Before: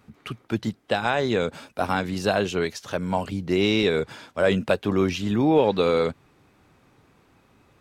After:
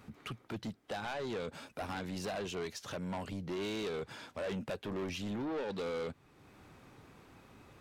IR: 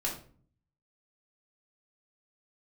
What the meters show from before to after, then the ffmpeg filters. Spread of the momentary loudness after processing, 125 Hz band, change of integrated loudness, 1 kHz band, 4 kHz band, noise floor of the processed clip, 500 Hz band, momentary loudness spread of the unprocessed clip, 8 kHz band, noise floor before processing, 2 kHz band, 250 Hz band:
20 LU, −15.0 dB, −16.0 dB, −15.5 dB, −14.0 dB, −64 dBFS, −16.0 dB, 10 LU, −9.0 dB, −60 dBFS, −15.5 dB, −15.5 dB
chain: -af "acompressor=threshold=-50dB:ratio=1.5,asoftclip=type=tanh:threshold=-35dB,volume=1dB"

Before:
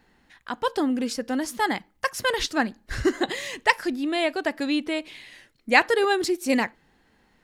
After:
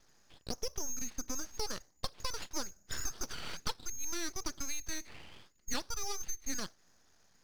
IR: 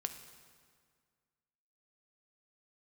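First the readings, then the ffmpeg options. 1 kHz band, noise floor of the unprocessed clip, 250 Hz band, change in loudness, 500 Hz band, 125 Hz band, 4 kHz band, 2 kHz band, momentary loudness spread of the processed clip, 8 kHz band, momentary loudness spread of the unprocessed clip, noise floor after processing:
−20.0 dB, −64 dBFS, −21.5 dB, −15.0 dB, −22.0 dB, −8.0 dB, −10.5 dB, −22.0 dB, 6 LU, +1.0 dB, 10 LU, −67 dBFS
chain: -af "acompressor=threshold=-29dB:ratio=6,lowpass=frequency=3000:width_type=q:width=0.5098,lowpass=frequency=3000:width_type=q:width=0.6013,lowpass=frequency=3000:width_type=q:width=0.9,lowpass=frequency=3000:width_type=q:width=2.563,afreqshift=-3500,aeval=exprs='abs(val(0))':channel_layout=same,volume=-3dB"

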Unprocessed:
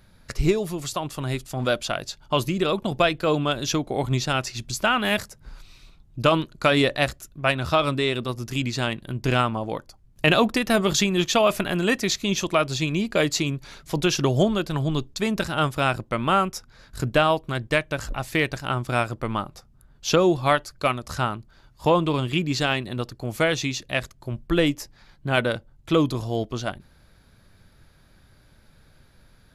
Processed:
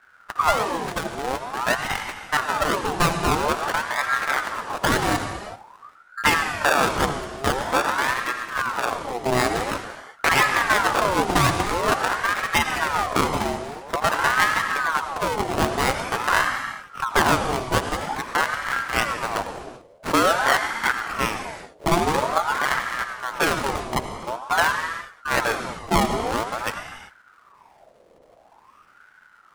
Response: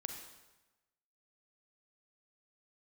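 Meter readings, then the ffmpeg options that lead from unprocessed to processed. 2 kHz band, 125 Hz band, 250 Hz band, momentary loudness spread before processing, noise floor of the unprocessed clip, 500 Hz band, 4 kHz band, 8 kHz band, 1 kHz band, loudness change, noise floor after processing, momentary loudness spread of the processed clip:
+5.5 dB, −5.5 dB, −4.5 dB, 10 LU, −56 dBFS, −2.5 dB, −1.0 dB, +1.5 dB, +5.5 dB, +1.0 dB, −54 dBFS, 10 LU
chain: -filter_complex "[0:a]acrusher=samples=29:mix=1:aa=0.000001:lfo=1:lforange=29:lforate=0.93,asplit=2[link_01][link_02];[1:a]atrim=start_sample=2205,afade=type=out:start_time=0.25:duration=0.01,atrim=end_sample=11466,asetrate=22491,aresample=44100[link_03];[link_02][link_03]afir=irnorm=-1:irlink=0,volume=5dB[link_04];[link_01][link_04]amix=inputs=2:normalize=0,aeval=exprs='val(0)*sin(2*PI*1000*n/s+1000*0.5/0.48*sin(2*PI*0.48*n/s))':channel_layout=same,volume=-6.5dB"

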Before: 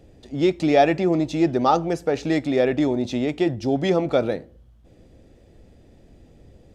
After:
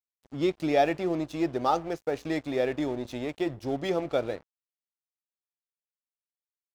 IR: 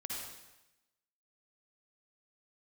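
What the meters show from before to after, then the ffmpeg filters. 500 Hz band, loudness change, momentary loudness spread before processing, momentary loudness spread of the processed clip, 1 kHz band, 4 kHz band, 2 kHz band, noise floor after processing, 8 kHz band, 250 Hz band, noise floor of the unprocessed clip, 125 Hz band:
−7.5 dB, −7.5 dB, 6 LU, 8 LU, −6.5 dB, −7.0 dB, −6.5 dB, below −85 dBFS, can't be measured, −9.0 dB, −52 dBFS, −10.5 dB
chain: -af "adynamicequalizer=threshold=0.0126:dfrequency=200:dqfactor=1.7:tfrequency=200:tqfactor=1.7:attack=5:release=100:ratio=0.375:range=3.5:mode=cutabove:tftype=bell,aeval=exprs='sgn(val(0))*max(abs(val(0))-0.0112,0)':channel_layout=same,volume=-6dB"

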